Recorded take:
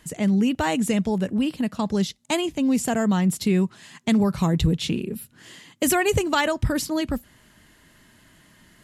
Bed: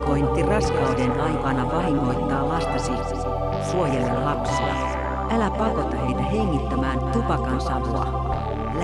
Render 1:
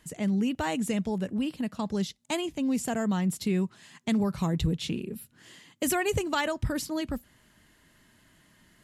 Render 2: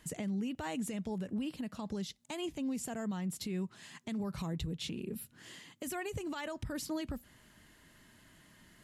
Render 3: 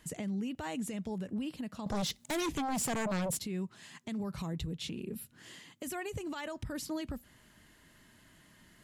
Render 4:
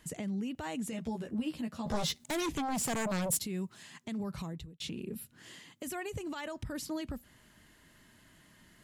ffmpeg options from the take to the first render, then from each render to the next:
ffmpeg -i in.wav -af "volume=-6.5dB" out.wav
ffmpeg -i in.wav -af "acompressor=threshold=-31dB:ratio=6,alimiter=level_in=6dB:limit=-24dB:level=0:latency=1:release=127,volume=-6dB" out.wav
ffmpeg -i in.wav -filter_complex "[0:a]asettb=1/sr,asplit=3[link_01][link_02][link_03];[link_01]atrim=end=1.864[link_04];[link_02]atrim=start=1.86:end=3.39,asetpts=PTS-STARTPTS,afade=type=in:duration=0.004:curve=qsin,afade=type=out:start_time=1.526:duration=0.004:curve=qsin,aeval=exprs='0.0335*sin(PI/2*2.51*val(0)/0.0335)':channel_layout=same[link_05];[link_03]atrim=start=3.386[link_06];[link_04][link_05]acrossfade=duration=0.004:curve1=hsin:curve2=qsin[link_07];[link_07][link_06]acrossfade=duration=0.004:curve1=qsin:curve2=hsin" out.wav
ffmpeg -i in.wav -filter_complex "[0:a]asettb=1/sr,asplit=3[link_01][link_02][link_03];[link_01]atrim=end=0.914[link_04];[link_02]atrim=start=0.91:end=2.24,asetpts=PTS-STARTPTS,afade=type=in:duration=0.004:curve=qsin,afade=type=out:start_time=1.326:duration=0.004:curve=qsin,asplit=2[link_05][link_06];[link_06]adelay=13,volume=-2dB[link_07];[link_05][link_07]amix=inputs=2:normalize=0,atrim=end_sample=58653[link_08];[link_03]atrim=start=2.236[link_09];[link_04][link_08]acrossfade=duration=0.004:curve1=hsin:curve2=qsin[link_10];[link_10][link_09]acrossfade=duration=0.004:curve1=qsin:curve2=hsin,asettb=1/sr,asplit=3[link_11][link_12][link_13];[link_11]atrim=end=2.874[link_14];[link_12]atrim=start=2.87:end=3.83,asetpts=PTS-STARTPTS,afade=type=in:duration=0.004:curve=qsin,afade=type=out:start_time=0.956:duration=0.004:curve=qsin,highshelf=frequency=6900:gain=8.5[link_15];[link_13]atrim=start=3.826[link_16];[link_14][link_15]acrossfade=duration=0.004:curve1=hsin:curve2=qsin[link_17];[link_17][link_16]acrossfade=duration=0.004:curve1=qsin:curve2=hsin,asplit=2[link_18][link_19];[link_18]atrim=end=4.8,asetpts=PTS-STARTPTS,afade=type=out:start_time=4.37:duration=0.43[link_20];[link_19]atrim=start=4.8,asetpts=PTS-STARTPTS,afade=type=in:duration=0.004:curve=hsin[link_21];[link_20][link_21]concat=n=2:v=0:a=1" out.wav

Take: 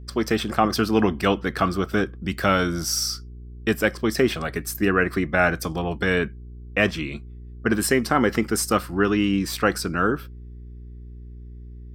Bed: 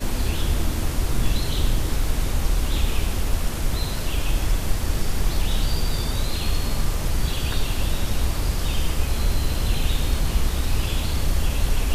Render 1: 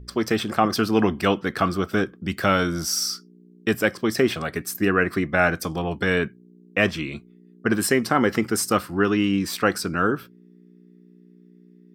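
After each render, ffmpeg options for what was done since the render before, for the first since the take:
ffmpeg -i in.wav -af "bandreject=frequency=60:width_type=h:width=4,bandreject=frequency=120:width_type=h:width=4" out.wav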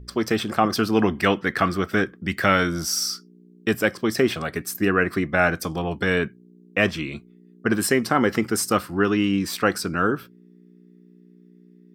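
ffmpeg -i in.wav -filter_complex "[0:a]asettb=1/sr,asplit=3[link_01][link_02][link_03];[link_01]atrim=end=1.154[link_04];[link_02]atrim=start=1.15:end=2.69,asetpts=PTS-STARTPTS,afade=type=in:duration=0.004:curve=qsin,afade=type=out:start_time=1.536:duration=0.004:curve=qsin,equalizer=frequency=1900:width=2.9:gain=8[link_05];[link_03]atrim=start=2.686[link_06];[link_04][link_05]acrossfade=duration=0.004:curve1=hsin:curve2=qsin[link_07];[link_07][link_06]acrossfade=duration=0.004:curve1=qsin:curve2=hsin" out.wav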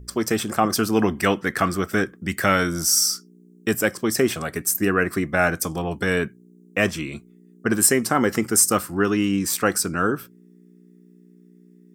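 ffmpeg -i in.wav -af "highshelf=frequency=5500:width_type=q:width=1.5:gain=8.5" out.wav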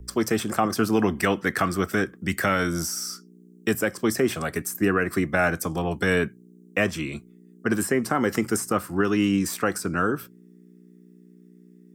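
ffmpeg -i in.wav -filter_complex "[0:a]acrossover=split=120|760|2500[link_01][link_02][link_03][link_04];[link_04]acompressor=threshold=-30dB:ratio=6[link_05];[link_01][link_02][link_03][link_05]amix=inputs=4:normalize=0,alimiter=limit=-10.5dB:level=0:latency=1:release=208" out.wav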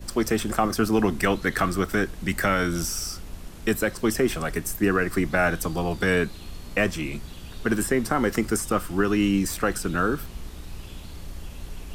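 ffmpeg -i in.wav -i bed.wav -filter_complex "[1:a]volume=-16dB[link_01];[0:a][link_01]amix=inputs=2:normalize=0" out.wav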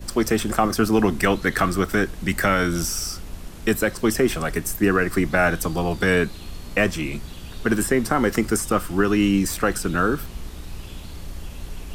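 ffmpeg -i in.wav -af "volume=3dB" out.wav

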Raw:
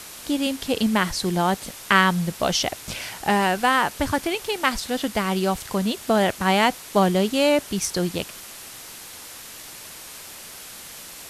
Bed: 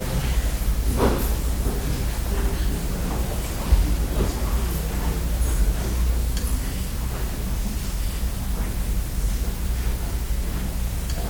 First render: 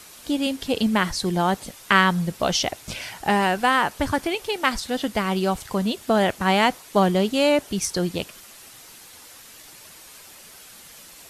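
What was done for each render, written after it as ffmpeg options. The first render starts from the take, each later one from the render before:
ffmpeg -i in.wav -af "afftdn=noise_reduction=7:noise_floor=-40" out.wav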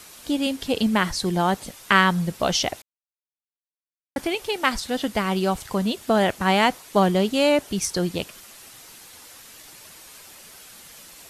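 ffmpeg -i in.wav -filter_complex "[0:a]asplit=3[link_01][link_02][link_03];[link_01]atrim=end=2.82,asetpts=PTS-STARTPTS,afade=type=out:start_time=2.816:duration=0.004:curve=hsin[link_04];[link_02]atrim=start=2.82:end=4.16,asetpts=PTS-STARTPTS,volume=0[link_05];[link_03]atrim=start=4.16,asetpts=PTS-STARTPTS,afade=type=in:duration=0.004:curve=hsin[link_06];[link_04][link_05][link_06]concat=n=3:v=0:a=1" out.wav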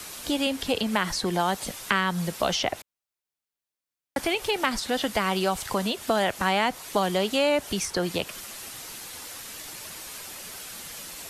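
ffmpeg -i in.wav -filter_complex "[0:a]acrossover=split=180|490|2800[link_01][link_02][link_03][link_04];[link_01]acompressor=threshold=-43dB:ratio=4[link_05];[link_02]acompressor=threshold=-37dB:ratio=4[link_06];[link_03]acompressor=threshold=-25dB:ratio=4[link_07];[link_04]acompressor=threshold=-36dB:ratio=4[link_08];[link_05][link_06][link_07][link_08]amix=inputs=4:normalize=0,asplit=2[link_09][link_10];[link_10]alimiter=level_in=1dB:limit=-24dB:level=0:latency=1:release=95,volume=-1dB,volume=-1dB[link_11];[link_09][link_11]amix=inputs=2:normalize=0" out.wav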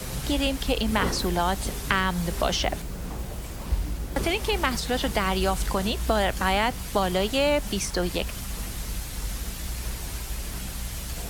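ffmpeg -i in.wav -i bed.wav -filter_complex "[1:a]volume=-8.5dB[link_01];[0:a][link_01]amix=inputs=2:normalize=0" out.wav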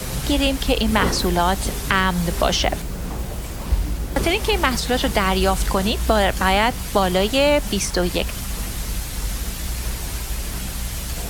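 ffmpeg -i in.wav -af "volume=6dB,alimiter=limit=-2dB:level=0:latency=1" out.wav

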